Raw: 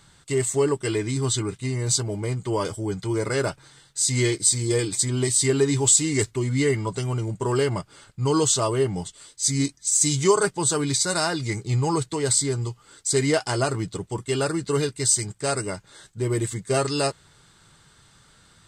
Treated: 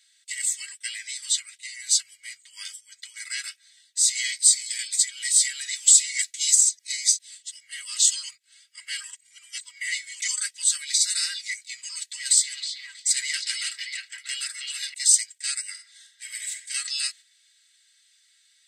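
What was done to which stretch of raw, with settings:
0:06.34–0:10.22: reverse
0:11.89–0:14.94: echo through a band-pass that steps 318 ms, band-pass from 3,100 Hz, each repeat −0.7 octaves, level −1.5 dB
0:15.71–0:16.50: thrown reverb, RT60 1.3 s, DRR 2.5 dB
whole clip: elliptic high-pass filter 1,900 Hz, stop band 60 dB; comb filter 3.1 ms, depth 75%; noise gate −44 dBFS, range −6 dB; level +1.5 dB

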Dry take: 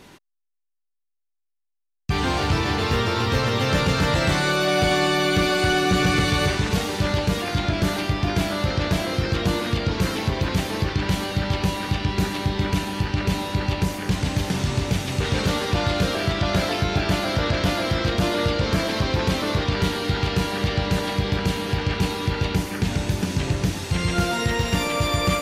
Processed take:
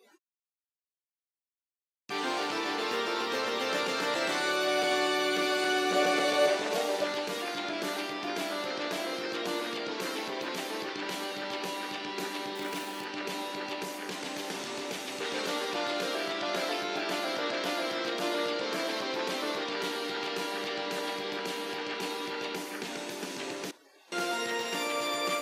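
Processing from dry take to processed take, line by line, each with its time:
0:05.92–0:07.04: parametric band 610 Hz +12.5 dB 0.55 octaves
0:12.55–0:13.05: gap after every zero crossing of 0.059 ms
0:23.71–0:24.12: fill with room tone
whole clip: noise reduction from a noise print of the clip's start 22 dB; high-pass filter 290 Hz 24 dB per octave; level −7 dB

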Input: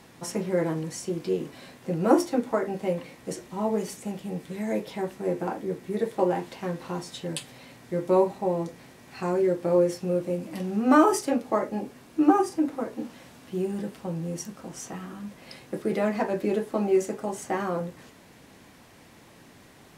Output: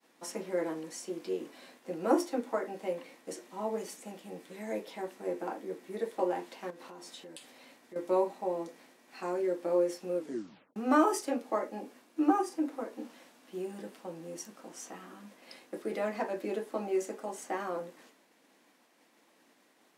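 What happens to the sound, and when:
0:06.70–0:07.96: downward compressor, threshold −36 dBFS
0:10.17: tape stop 0.59 s
whole clip: high-pass filter 250 Hz 24 dB per octave; notch filter 400 Hz, Q 12; downward expander −48 dBFS; level −6 dB

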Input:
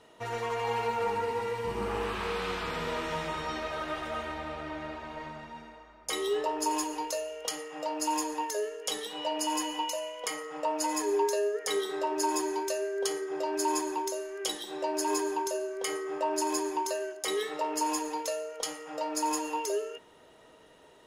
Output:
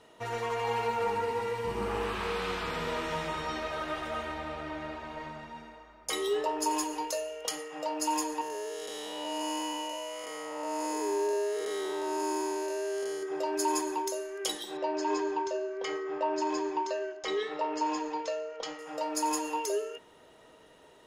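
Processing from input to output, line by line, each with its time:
0:08.41–0:13.23: spectrum smeared in time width 317 ms
0:14.77–0:18.79: Bessel low-pass filter 3,900 Hz, order 8

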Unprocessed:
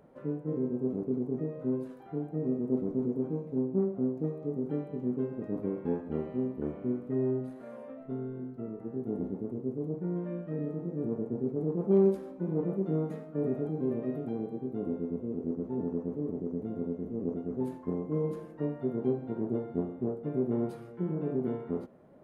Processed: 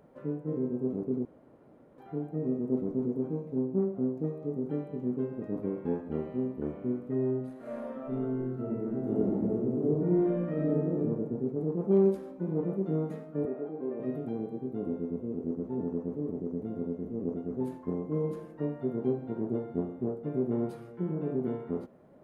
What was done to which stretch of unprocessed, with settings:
0:01.25–0:01.98: fill with room tone
0:07.59–0:10.99: thrown reverb, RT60 0.95 s, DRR −6 dB
0:13.45–0:14.00: band-pass filter 350–2,100 Hz

